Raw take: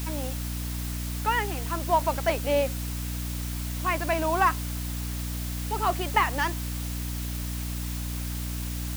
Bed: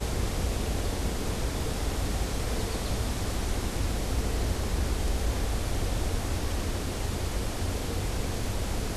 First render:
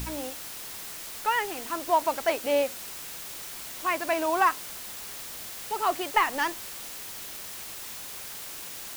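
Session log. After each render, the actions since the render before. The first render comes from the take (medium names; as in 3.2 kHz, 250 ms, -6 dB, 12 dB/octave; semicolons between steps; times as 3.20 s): de-hum 60 Hz, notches 5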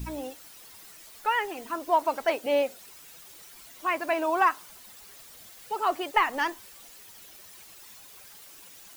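noise reduction 12 dB, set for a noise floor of -40 dBFS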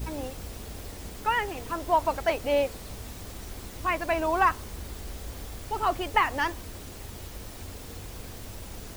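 add bed -11 dB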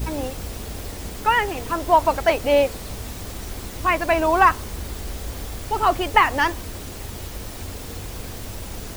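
trim +7.5 dB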